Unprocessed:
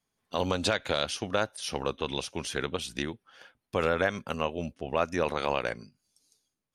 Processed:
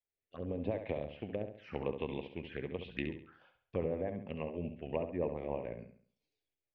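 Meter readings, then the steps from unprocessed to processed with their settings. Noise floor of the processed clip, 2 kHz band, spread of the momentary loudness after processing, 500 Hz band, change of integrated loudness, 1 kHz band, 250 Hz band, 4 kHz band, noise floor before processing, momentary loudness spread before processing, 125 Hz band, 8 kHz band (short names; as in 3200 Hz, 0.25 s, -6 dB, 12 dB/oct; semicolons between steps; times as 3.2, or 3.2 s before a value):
under -85 dBFS, -15.5 dB, 8 LU, -7.5 dB, -9.0 dB, -15.0 dB, -5.0 dB, -21.0 dB, -84 dBFS, 8 LU, -5.0 dB, under -40 dB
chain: treble ducked by the level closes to 870 Hz, closed at -25 dBFS; AGC gain up to 8 dB; rotary speaker horn 0.9 Hz, later 7 Hz, at 2.77; ladder low-pass 2800 Hz, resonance 40%; envelope phaser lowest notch 200 Hz, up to 1400 Hz, full sweep at -34.5 dBFS; flutter echo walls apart 11.7 m, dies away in 0.49 s; gain -3.5 dB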